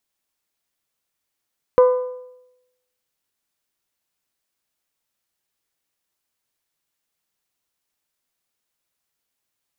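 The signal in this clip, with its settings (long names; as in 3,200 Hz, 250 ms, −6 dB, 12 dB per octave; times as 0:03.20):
struck metal bell, lowest mode 502 Hz, decay 0.89 s, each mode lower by 10 dB, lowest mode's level −7 dB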